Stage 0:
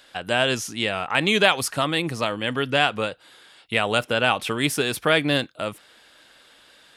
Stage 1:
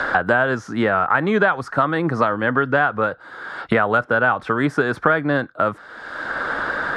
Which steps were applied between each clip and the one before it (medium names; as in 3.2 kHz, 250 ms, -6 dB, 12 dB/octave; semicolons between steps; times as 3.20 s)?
low-pass 4.5 kHz 12 dB/octave; resonant high shelf 2 kHz -10.5 dB, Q 3; three bands compressed up and down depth 100%; trim +2.5 dB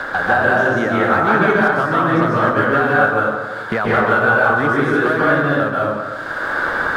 waveshaping leveller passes 1; plate-style reverb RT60 1.5 s, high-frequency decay 0.55×, pre-delay 120 ms, DRR -6 dB; trim -6.5 dB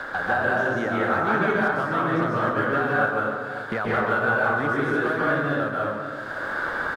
delay 561 ms -13 dB; trim -8 dB